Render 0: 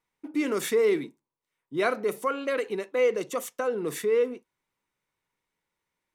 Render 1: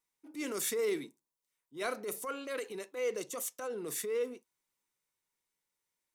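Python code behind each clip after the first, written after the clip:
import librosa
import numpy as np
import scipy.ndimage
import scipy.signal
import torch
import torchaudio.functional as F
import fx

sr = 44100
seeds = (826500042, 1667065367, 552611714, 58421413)

y = fx.bass_treble(x, sr, bass_db=-3, treble_db=12)
y = fx.transient(y, sr, attack_db=-8, sustain_db=1)
y = y * librosa.db_to_amplitude(-8.5)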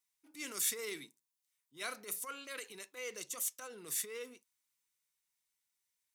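y = fx.tone_stack(x, sr, knobs='5-5-5')
y = y * librosa.db_to_amplitude(8.0)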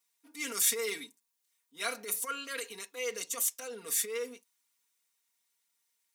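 y = scipy.signal.sosfilt(scipy.signal.butter(2, 230.0, 'highpass', fs=sr, output='sos'), x)
y = y + 0.91 * np.pad(y, (int(4.3 * sr / 1000.0), 0))[:len(y)]
y = y * librosa.db_to_amplitude(4.0)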